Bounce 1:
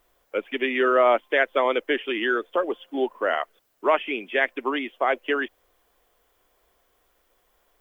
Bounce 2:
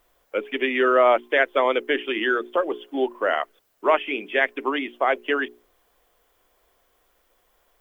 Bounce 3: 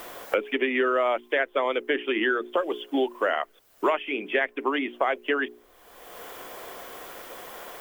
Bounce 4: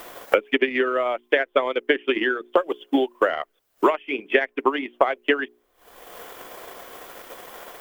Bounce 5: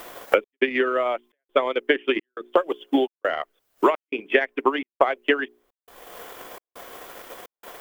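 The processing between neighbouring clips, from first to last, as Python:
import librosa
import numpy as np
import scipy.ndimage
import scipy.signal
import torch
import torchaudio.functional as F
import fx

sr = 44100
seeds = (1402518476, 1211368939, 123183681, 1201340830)

y1 = fx.hum_notches(x, sr, base_hz=60, count=7)
y1 = y1 * 10.0 ** (1.5 / 20.0)
y2 = fx.band_squash(y1, sr, depth_pct=100)
y2 = y2 * 10.0 ** (-4.0 / 20.0)
y3 = fx.transient(y2, sr, attack_db=8, sustain_db=-10)
y4 = fx.step_gate(y3, sr, bpm=171, pattern='xxxxx..xxx', floor_db=-60.0, edge_ms=4.5)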